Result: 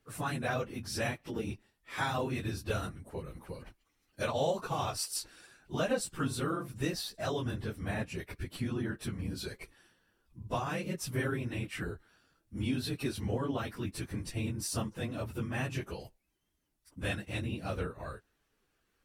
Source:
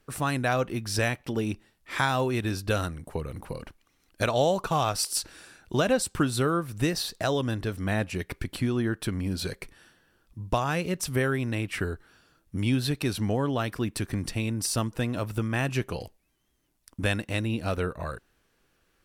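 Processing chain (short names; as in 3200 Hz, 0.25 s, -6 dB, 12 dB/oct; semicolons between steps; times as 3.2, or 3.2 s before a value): phase scrambler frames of 50 ms; 6.11–6.68 de-hum 49.45 Hz, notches 22; gain -7.5 dB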